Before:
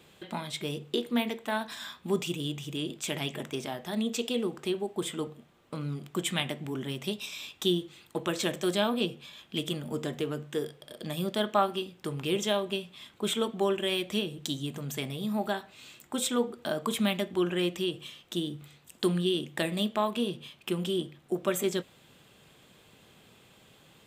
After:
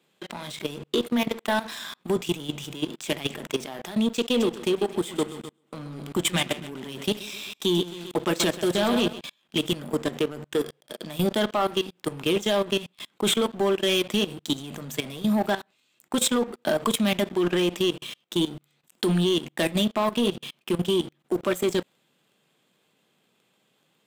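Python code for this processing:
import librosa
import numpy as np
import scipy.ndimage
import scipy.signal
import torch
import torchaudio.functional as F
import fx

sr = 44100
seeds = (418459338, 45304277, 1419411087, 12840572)

y = fx.echo_feedback(x, sr, ms=130, feedback_pct=48, wet_db=-10.0, at=(4.38, 9.19), fade=0.02)
y = scipy.signal.sosfilt(scipy.signal.butter(4, 150.0, 'highpass', fs=sr, output='sos'), y)
y = fx.level_steps(y, sr, step_db=16)
y = fx.leveller(y, sr, passes=3)
y = y * librosa.db_to_amplitude(1.0)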